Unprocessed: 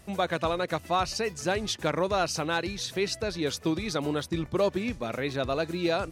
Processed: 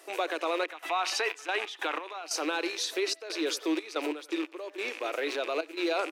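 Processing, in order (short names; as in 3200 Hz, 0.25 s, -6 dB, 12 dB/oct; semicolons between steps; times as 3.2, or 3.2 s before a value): rattling part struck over -41 dBFS, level -29 dBFS; spectral gain 0.64–2.23, 680–4000 Hz +9 dB; limiter -22.5 dBFS, peak gain reduction 16 dB; speakerphone echo 90 ms, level -14 dB; step gate "xxxx.xxx.x.x..x" 91 bpm -12 dB; Chebyshev high-pass 300 Hz, order 6; gain +3.5 dB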